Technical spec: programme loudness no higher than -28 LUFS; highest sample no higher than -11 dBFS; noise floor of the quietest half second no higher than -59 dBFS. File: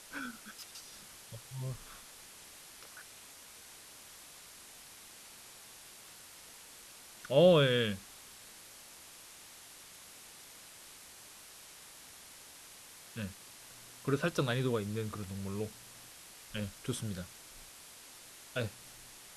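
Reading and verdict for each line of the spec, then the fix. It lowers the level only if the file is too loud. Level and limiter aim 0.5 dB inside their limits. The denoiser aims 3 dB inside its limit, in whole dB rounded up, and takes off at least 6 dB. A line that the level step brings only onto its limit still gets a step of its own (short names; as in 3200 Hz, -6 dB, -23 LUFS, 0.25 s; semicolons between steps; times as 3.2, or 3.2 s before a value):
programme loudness -34.0 LUFS: OK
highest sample -13.5 dBFS: OK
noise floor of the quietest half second -54 dBFS: fail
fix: denoiser 8 dB, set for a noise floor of -54 dBFS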